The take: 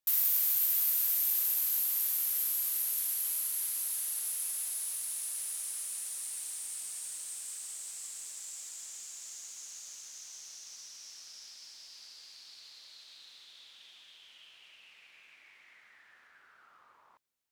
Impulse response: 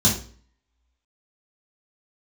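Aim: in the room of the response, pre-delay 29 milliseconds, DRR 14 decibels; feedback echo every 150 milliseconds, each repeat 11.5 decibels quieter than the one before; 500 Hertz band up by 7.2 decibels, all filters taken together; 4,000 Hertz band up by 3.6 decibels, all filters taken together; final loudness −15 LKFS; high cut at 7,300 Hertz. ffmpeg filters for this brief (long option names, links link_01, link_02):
-filter_complex "[0:a]lowpass=7300,equalizer=frequency=500:width_type=o:gain=9,equalizer=frequency=4000:width_type=o:gain=5,aecho=1:1:150|300|450:0.266|0.0718|0.0194,asplit=2[link_01][link_02];[1:a]atrim=start_sample=2205,adelay=29[link_03];[link_02][link_03]afir=irnorm=-1:irlink=0,volume=-28.5dB[link_04];[link_01][link_04]amix=inputs=2:normalize=0,volume=25dB"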